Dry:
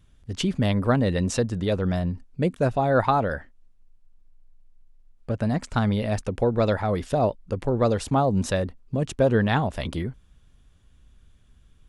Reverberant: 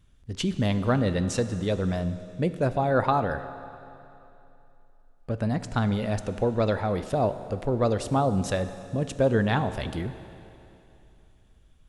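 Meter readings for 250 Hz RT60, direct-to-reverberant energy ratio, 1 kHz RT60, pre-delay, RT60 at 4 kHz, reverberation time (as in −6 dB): 2.9 s, 11.0 dB, 2.9 s, 16 ms, 2.9 s, 2.9 s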